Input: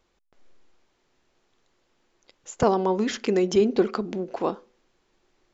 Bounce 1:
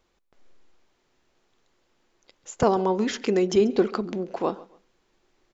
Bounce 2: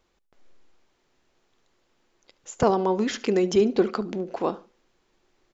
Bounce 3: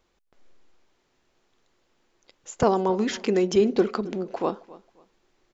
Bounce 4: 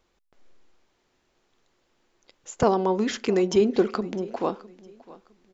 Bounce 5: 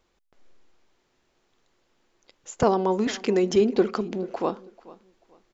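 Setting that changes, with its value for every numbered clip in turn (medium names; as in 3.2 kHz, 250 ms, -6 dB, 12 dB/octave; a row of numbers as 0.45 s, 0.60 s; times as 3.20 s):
feedback delay, time: 137 ms, 72 ms, 269 ms, 658 ms, 439 ms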